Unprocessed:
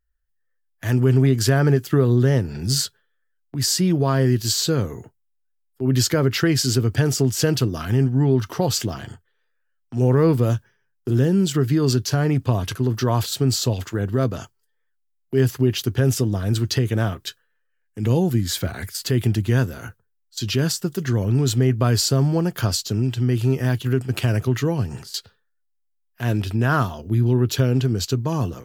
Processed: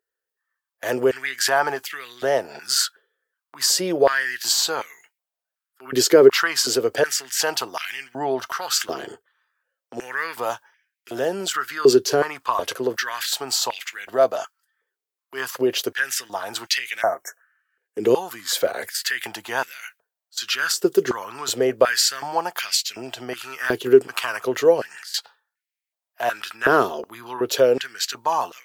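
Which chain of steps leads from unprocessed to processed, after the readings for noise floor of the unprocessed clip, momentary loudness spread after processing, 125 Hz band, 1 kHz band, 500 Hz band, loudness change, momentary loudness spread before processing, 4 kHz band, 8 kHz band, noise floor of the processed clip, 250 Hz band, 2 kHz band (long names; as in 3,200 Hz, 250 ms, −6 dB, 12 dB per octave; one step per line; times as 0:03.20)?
−70 dBFS, 14 LU, −24.5 dB, +6.0 dB, +4.0 dB, −1.0 dB, 9 LU, +3.0 dB, +2.5 dB, below −85 dBFS, −8.0 dB, +6.5 dB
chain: healed spectral selection 0:17.04–0:17.75, 2,200–5,400 Hz after
high-pass on a step sequencer 2.7 Hz 410–2,200 Hz
level +2 dB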